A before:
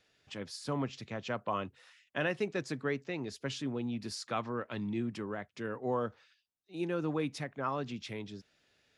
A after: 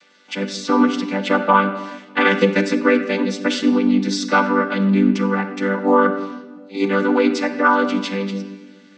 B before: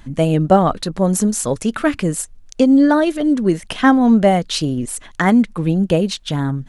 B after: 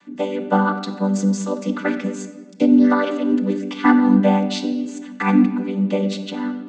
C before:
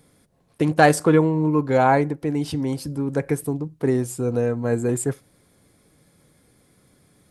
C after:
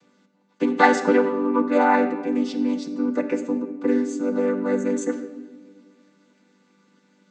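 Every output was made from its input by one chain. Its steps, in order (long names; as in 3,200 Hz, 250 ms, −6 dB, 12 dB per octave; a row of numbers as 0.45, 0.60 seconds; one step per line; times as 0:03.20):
channel vocoder with a chord as carrier major triad, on G3
tilt shelving filter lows −7 dB, about 700 Hz
rectangular room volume 1,100 cubic metres, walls mixed, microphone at 0.72 metres
normalise the peak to −1.5 dBFS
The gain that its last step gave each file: +22.5, +2.0, +3.5 decibels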